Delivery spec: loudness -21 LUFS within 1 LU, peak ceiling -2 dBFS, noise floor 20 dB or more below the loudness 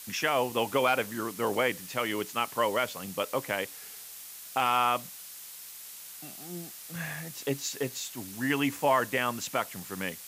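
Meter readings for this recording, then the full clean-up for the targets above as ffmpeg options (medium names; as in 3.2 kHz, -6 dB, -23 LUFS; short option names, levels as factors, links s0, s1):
noise floor -45 dBFS; noise floor target -50 dBFS; loudness -30.0 LUFS; peak level -13.5 dBFS; loudness target -21.0 LUFS
-> -af "afftdn=nr=6:nf=-45"
-af "volume=2.82"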